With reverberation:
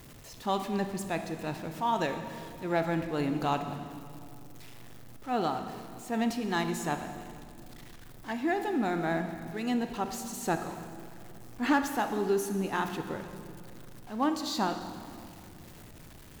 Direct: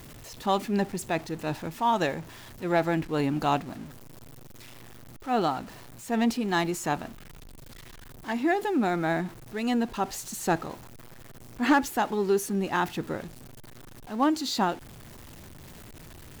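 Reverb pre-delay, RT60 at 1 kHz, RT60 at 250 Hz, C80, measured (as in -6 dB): 24 ms, 2.3 s, 3.0 s, 9.0 dB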